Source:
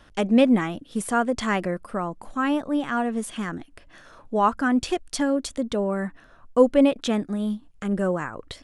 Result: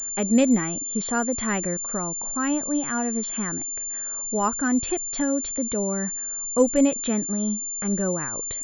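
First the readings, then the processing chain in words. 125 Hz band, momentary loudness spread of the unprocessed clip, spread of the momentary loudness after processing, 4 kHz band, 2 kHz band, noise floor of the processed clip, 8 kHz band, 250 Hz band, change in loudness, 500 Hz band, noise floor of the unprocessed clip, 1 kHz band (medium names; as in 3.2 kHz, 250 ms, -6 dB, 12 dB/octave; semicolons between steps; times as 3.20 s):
-0.5 dB, 12 LU, 7 LU, -5.0 dB, -2.5 dB, -31 dBFS, +17.0 dB, -0.5 dB, 0.0 dB, -3.0 dB, -54 dBFS, -4.5 dB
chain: dynamic bell 840 Hz, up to -5 dB, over -33 dBFS, Q 0.77; class-D stage that switches slowly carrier 7.2 kHz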